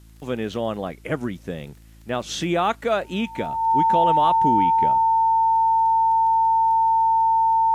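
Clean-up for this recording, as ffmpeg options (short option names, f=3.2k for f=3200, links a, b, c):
-af "adeclick=t=4,bandreject=f=54.9:t=h:w=4,bandreject=f=109.8:t=h:w=4,bandreject=f=164.7:t=h:w=4,bandreject=f=219.6:t=h:w=4,bandreject=f=274.5:t=h:w=4,bandreject=f=329.4:t=h:w=4,bandreject=f=900:w=30,agate=range=-21dB:threshold=-37dB"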